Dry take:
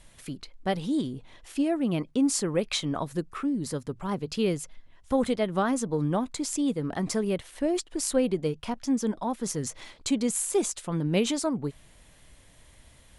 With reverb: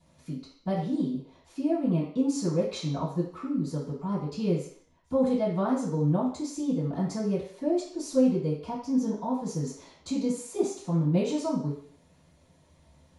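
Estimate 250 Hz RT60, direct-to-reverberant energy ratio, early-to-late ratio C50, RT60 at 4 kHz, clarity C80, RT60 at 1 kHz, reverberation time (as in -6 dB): 0.50 s, -15.5 dB, 5.0 dB, 0.60 s, 9.0 dB, 0.55 s, 0.55 s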